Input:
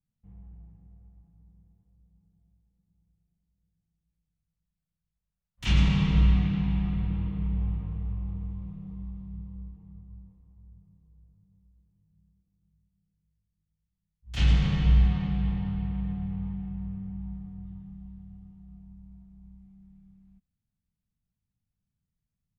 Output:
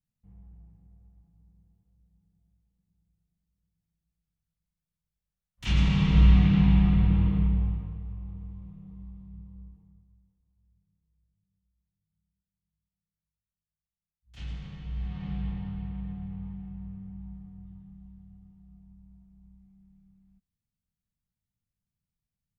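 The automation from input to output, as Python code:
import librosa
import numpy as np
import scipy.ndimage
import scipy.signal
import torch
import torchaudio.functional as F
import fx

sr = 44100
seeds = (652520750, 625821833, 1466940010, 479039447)

y = fx.gain(x, sr, db=fx.line((5.66, -3.0), (6.61, 7.0), (7.36, 7.0), (8.04, -5.5), (9.74, -5.5), (10.18, -16.5), (14.9, -16.5), (15.31, -5.0)))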